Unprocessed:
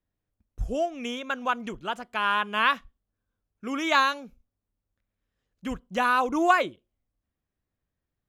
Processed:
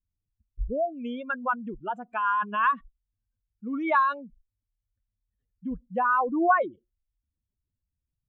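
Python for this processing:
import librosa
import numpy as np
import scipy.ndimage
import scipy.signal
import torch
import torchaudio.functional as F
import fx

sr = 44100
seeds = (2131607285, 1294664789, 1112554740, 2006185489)

y = fx.spec_expand(x, sr, power=2.4)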